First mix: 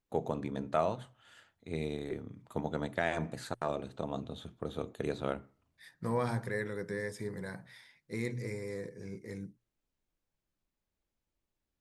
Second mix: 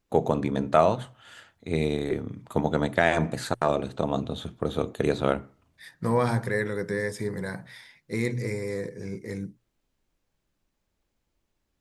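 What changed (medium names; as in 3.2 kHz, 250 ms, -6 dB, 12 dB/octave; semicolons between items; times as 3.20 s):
first voice +10.5 dB; second voice +8.5 dB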